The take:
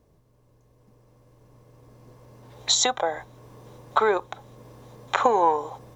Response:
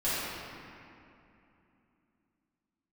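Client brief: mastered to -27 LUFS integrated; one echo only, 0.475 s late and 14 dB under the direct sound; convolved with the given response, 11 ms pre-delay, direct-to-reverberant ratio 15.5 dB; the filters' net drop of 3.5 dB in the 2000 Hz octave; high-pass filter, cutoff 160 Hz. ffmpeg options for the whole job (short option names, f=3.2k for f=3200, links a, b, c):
-filter_complex "[0:a]highpass=160,equalizer=f=2k:t=o:g=-5,aecho=1:1:475:0.2,asplit=2[a][b];[1:a]atrim=start_sample=2205,adelay=11[c];[b][c]afir=irnorm=-1:irlink=0,volume=-26dB[d];[a][d]amix=inputs=2:normalize=0,volume=-2dB"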